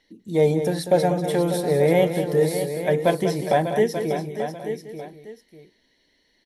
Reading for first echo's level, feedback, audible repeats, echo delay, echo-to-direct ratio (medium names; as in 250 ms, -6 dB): -9.5 dB, no regular repeats, 5, 194 ms, -5.0 dB